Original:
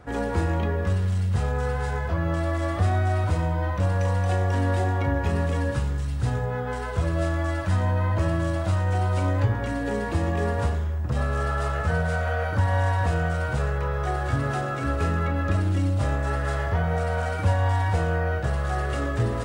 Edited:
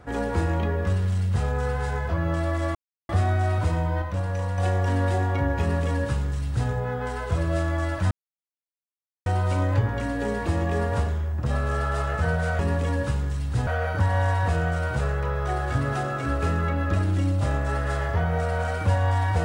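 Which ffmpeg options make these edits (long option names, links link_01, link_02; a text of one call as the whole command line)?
ffmpeg -i in.wav -filter_complex "[0:a]asplit=8[link_01][link_02][link_03][link_04][link_05][link_06][link_07][link_08];[link_01]atrim=end=2.75,asetpts=PTS-STARTPTS,afade=type=out:start_time=2.746:duration=0.004:curve=hsin,apad=pad_dur=0.34[link_09];[link_02]atrim=start=2.75:end=3.682,asetpts=PTS-STARTPTS,afade=type=in:duration=0.004:curve=hsin[link_10];[link_03]atrim=start=3.678:end=4.242,asetpts=PTS-STARTPTS,volume=-4dB[link_11];[link_04]atrim=start=4.238:end=7.77,asetpts=PTS-STARTPTS,afade=type=out:start_time=3.528:duration=0.004:curve=hsin[link_12];[link_05]atrim=start=7.77:end=8.92,asetpts=PTS-STARTPTS,volume=0[link_13];[link_06]atrim=start=8.92:end=12.252,asetpts=PTS-STARTPTS,afade=type=in:duration=0.004:curve=hsin[link_14];[link_07]atrim=start=5.268:end=6.352[link_15];[link_08]atrim=start=12.248[link_16];[link_09][link_10]concat=n=2:v=0:a=1[link_17];[link_17][link_11]acrossfade=duration=0.004:curve1=hsin:curve2=hsin[link_18];[link_12][link_13][link_14]concat=n=3:v=0:a=1[link_19];[link_18][link_19]acrossfade=duration=0.004:curve1=hsin:curve2=hsin[link_20];[link_20][link_15]acrossfade=duration=0.004:curve1=hsin:curve2=hsin[link_21];[link_21][link_16]acrossfade=duration=0.004:curve1=hsin:curve2=hsin" out.wav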